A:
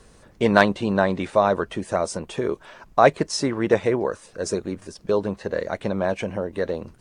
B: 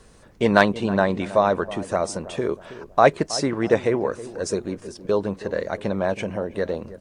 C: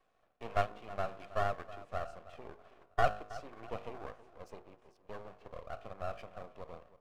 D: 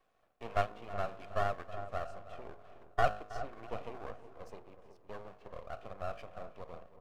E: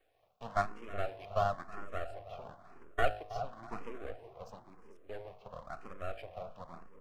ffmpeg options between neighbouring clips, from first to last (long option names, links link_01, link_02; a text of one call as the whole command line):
ffmpeg -i in.wav -filter_complex "[0:a]asplit=2[link_01][link_02];[link_02]adelay=321,lowpass=frequency=890:poles=1,volume=-14.5dB,asplit=2[link_03][link_04];[link_04]adelay=321,lowpass=frequency=890:poles=1,volume=0.51,asplit=2[link_05][link_06];[link_06]adelay=321,lowpass=frequency=890:poles=1,volume=0.51,asplit=2[link_07][link_08];[link_08]adelay=321,lowpass=frequency=890:poles=1,volume=0.51,asplit=2[link_09][link_10];[link_10]adelay=321,lowpass=frequency=890:poles=1,volume=0.51[link_11];[link_01][link_03][link_05][link_07][link_09][link_11]amix=inputs=6:normalize=0" out.wav
ffmpeg -i in.wav -filter_complex "[0:a]asplit=3[link_01][link_02][link_03];[link_01]bandpass=frequency=730:width_type=q:width=8,volume=0dB[link_04];[link_02]bandpass=frequency=1090:width_type=q:width=8,volume=-6dB[link_05];[link_03]bandpass=frequency=2440:width_type=q:width=8,volume=-9dB[link_06];[link_04][link_05][link_06]amix=inputs=3:normalize=0,bandreject=frequency=52.14:width_type=h:width=4,bandreject=frequency=104.28:width_type=h:width=4,bandreject=frequency=156.42:width_type=h:width=4,bandreject=frequency=208.56:width_type=h:width=4,bandreject=frequency=260.7:width_type=h:width=4,bandreject=frequency=312.84:width_type=h:width=4,bandreject=frequency=364.98:width_type=h:width=4,bandreject=frequency=417.12:width_type=h:width=4,bandreject=frequency=469.26:width_type=h:width=4,bandreject=frequency=521.4:width_type=h:width=4,bandreject=frequency=573.54:width_type=h:width=4,bandreject=frequency=625.68:width_type=h:width=4,bandreject=frequency=677.82:width_type=h:width=4,bandreject=frequency=729.96:width_type=h:width=4,bandreject=frequency=782.1:width_type=h:width=4,bandreject=frequency=834.24:width_type=h:width=4,bandreject=frequency=886.38:width_type=h:width=4,bandreject=frequency=938.52:width_type=h:width=4,bandreject=frequency=990.66:width_type=h:width=4,bandreject=frequency=1042.8:width_type=h:width=4,bandreject=frequency=1094.94:width_type=h:width=4,aeval=exprs='max(val(0),0)':channel_layout=same,volume=-4dB" out.wav
ffmpeg -i in.wav -filter_complex "[0:a]asplit=2[link_01][link_02];[link_02]adelay=371,lowpass=frequency=1100:poles=1,volume=-11dB,asplit=2[link_03][link_04];[link_04]adelay=371,lowpass=frequency=1100:poles=1,volume=0.37,asplit=2[link_05][link_06];[link_06]adelay=371,lowpass=frequency=1100:poles=1,volume=0.37,asplit=2[link_07][link_08];[link_08]adelay=371,lowpass=frequency=1100:poles=1,volume=0.37[link_09];[link_01][link_03][link_05][link_07][link_09]amix=inputs=5:normalize=0" out.wav
ffmpeg -i in.wav -filter_complex "[0:a]asplit=2[link_01][link_02];[link_02]afreqshift=0.98[link_03];[link_01][link_03]amix=inputs=2:normalize=1,volume=3.5dB" out.wav